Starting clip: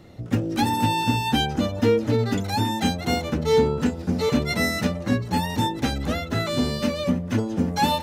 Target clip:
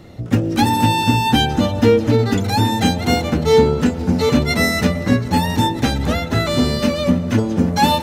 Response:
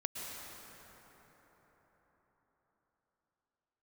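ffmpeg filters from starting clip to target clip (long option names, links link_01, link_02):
-filter_complex "[0:a]asplit=2[link_01][link_02];[1:a]atrim=start_sample=2205,lowshelf=frequency=140:gain=8[link_03];[link_02][link_03]afir=irnorm=-1:irlink=0,volume=-13.5dB[link_04];[link_01][link_04]amix=inputs=2:normalize=0,volume=5dB"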